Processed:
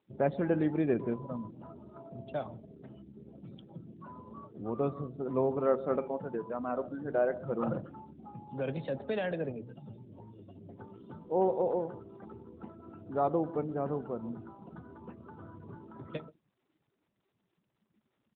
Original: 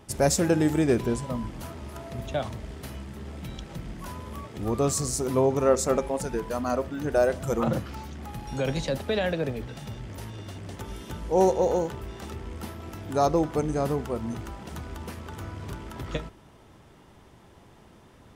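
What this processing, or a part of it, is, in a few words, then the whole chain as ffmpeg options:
mobile call with aggressive noise cancelling: -filter_complex "[0:a]asettb=1/sr,asplit=3[a][b][c];[a]atrim=end=6.604[d];[b]atrim=start=6.6:end=7.93,asetpts=PTS-STARTPTS,afade=t=in:d=0.004:c=qsin,afade=t=out:st=1.326:d=0.004:c=qsin,bandreject=f=151.2:t=h:w=4,bandreject=f=302.4:t=h:w=4,bandreject=f=453.6:t=h:w=4,bandreject=f=604.8:t=h:w=4[e];[c]atrim=start=7.926[f];[d][e]acrossfade=d=0.004:c1=hsin:c2=qsin[g];[g][f]acrossfade=d=0.004:c1=qsin:c2=hsin,highpass=130,aecho=1:1:130:0.133,afftdn=nr=30:nf=-39,volume=-6dB" -ar 8000 -c:a libopencore_amrnb -b:a 12200

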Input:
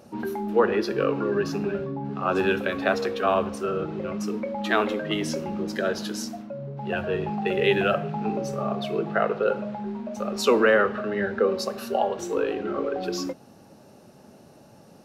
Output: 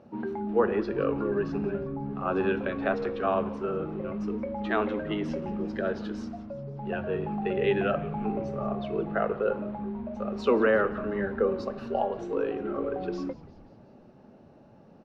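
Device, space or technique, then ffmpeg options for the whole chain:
phone in a pocket: -filter_complex "[0:a]lowpass=3.4k,equalizer=f=250:t=o:w=0.77:g=2,highshelf=f=2.3k:g=-8,asplit=7[a][b][c][d][e][f][g];[b]adelay=177,afreqshift=-130,volume=-18dB[h];[c]adelay=354,afreqshift=-260,volume=-22.3dB[i];[d]adelay=531,afreqshift=-390,volume=-26.6dB[j];[e]adelay=708,afreqshift=-520,volume=-30.9dB[k];[f]adelay=885,afreqshift=-650,volume=-35.2dB[l];[g]adelay=1062,afreqshift=-780,volume=-39.5dB[m];[a][h][i][j][k][l][m]amix=inputs=7:normalize=0,volume=-3.5dB"

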